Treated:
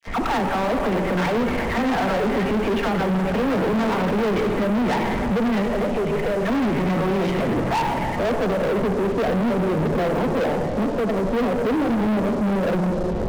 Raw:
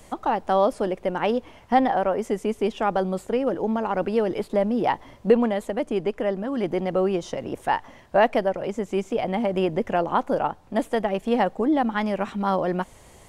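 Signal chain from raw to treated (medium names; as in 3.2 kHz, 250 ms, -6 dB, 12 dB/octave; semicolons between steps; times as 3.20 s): recorder AGC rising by 27 dB/s; low-pass sweep 2 kHz -> 510 Hz, 7.32–8.10 s; 10.42–11.18 s: compression, threshold -26 dBFS, peak gain reduction 12.5 dB; bass shelf 250 Hz +10.5 dB; feedback echo behind a high-pass 628 ms, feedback 72%, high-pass 2.2 kHz, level -9 dB; peak limiter -17 dBFS, peak gain reduction 14 dB; Chebyshev shaper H 2 -15 dB, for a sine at -12.5 dBFS; 5.60–6.44 s: static phaser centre 600 Hz, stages 4; phase dispersion lows, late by 67 ms, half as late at 950 Hz; reverberation RT60 2.2 s, pre-delay 4 ms, DRR 4 dB; waveshaping leveller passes 5; trim -8 dB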